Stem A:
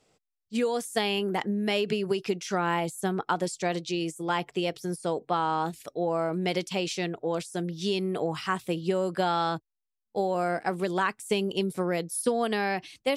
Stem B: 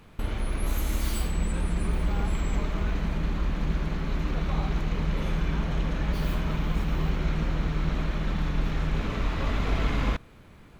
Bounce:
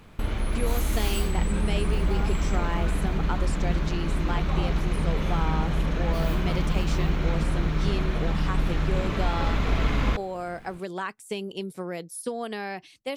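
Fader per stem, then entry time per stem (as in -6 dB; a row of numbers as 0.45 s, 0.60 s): -5.5 dB, +2.0 dB; 0.00 s, 0.00 s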